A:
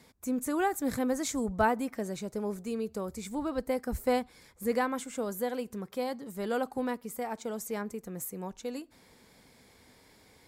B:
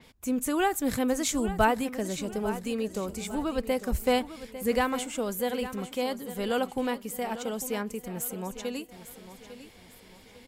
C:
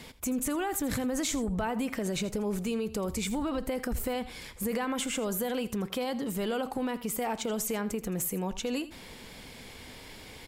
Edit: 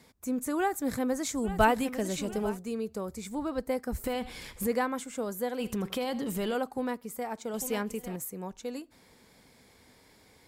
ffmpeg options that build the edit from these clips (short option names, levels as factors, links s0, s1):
-filter_complex "[1:a]asplit=2[s0][s1];[2:a]asplit=2[s2][s3];[0:a]asplit=5[s4][s5][s6][s7][s8];[s4]atrim=end=1.56[s9];[s0]atrim=start=1.4:end=2.59[s10];[s5]atrim=start=2.43:end=4.042[s11];[s2]atrim=start=4.038:end=4.672[s12];[s6]atrim=start=4.668:end=5.602[s13];[s3]atrim=start=5.598:end=6.552[s14];[s7]atrim=start=6.548:end=7.542[s15];[s1]atrim=start=7.538:end=8.162[s16];[s8]atrim=start=8.158[s17];[s9][s10]acrossfade=d=0.16:c1=tri:c2=tri[s18];[s18][s11]acrossfade=d=0.16:c1=tri:c2=tri[s19];[s19][s12]acrossfade=d=0.004:c1=hsin:c2=hsin[s20];[s20][s13]acrossfade=d=0.004:c1=hsin:c2=hsin[s21];[s21][s14]acrossfade=d=0.004:c1=hsin:c2=hsin[s22];[s22][s15]acrossfade=d=0.004:c1=hsin:c2=hsin[s23];[s23][s16]acrossfade=d=0.004:c1=hsin:c2=hsin[s24];[s24][s17]acrossfade=d=0.004:c1=hsin:c2=hsin"